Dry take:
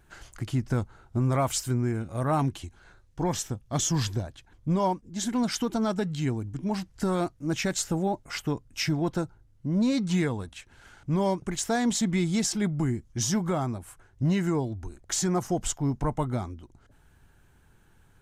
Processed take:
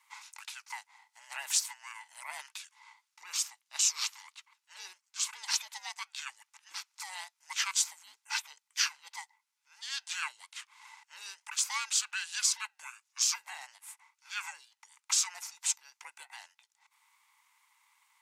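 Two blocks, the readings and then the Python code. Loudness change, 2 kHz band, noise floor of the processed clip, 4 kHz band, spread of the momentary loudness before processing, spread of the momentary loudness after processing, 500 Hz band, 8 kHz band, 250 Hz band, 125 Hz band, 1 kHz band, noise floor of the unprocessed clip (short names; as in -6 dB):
-4.5 dB, -0.5 dB, -83 dBFS, +2.0 dB, 9 LU, 20 LU, under -35 dB, +1.5 dB, under -40 dB, under -40 dB, -12.0 dB, -60 dBFS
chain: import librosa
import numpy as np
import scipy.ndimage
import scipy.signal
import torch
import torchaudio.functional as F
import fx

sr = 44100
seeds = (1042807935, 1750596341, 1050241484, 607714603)

y = scipy.signal.sosfilt(scipy.signal.cheby1(6, 3, 1400.0, 'highpass', fs=sr, output='sos'), x)
y = y * np.sin(2.0 * np.pi * 550.0 * np.arange(len(y)) / sr)
y = y * librosa.db_to_amplitude(5.5)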